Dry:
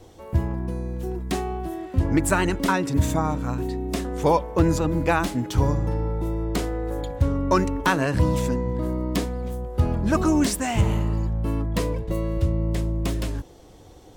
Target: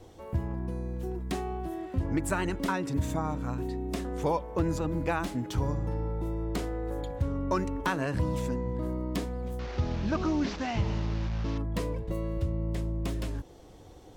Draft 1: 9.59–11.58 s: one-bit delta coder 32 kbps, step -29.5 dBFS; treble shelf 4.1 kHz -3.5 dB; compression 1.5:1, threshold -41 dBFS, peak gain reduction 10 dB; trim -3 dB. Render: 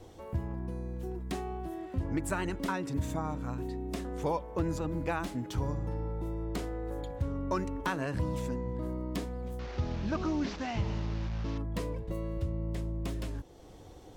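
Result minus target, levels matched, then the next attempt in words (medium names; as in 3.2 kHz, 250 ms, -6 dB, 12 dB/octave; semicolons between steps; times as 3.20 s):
compression: peak gain reduction +3.5 dB
9.59–11.58 s: one-bit delta coder 32 kbps, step -29.5 dBFS; treble shelf 4.1 kHz -3.5 dB; compression 1.5:1, threshold -31 dBFS, peak gain reduction 6.5 dB; trim -3 dB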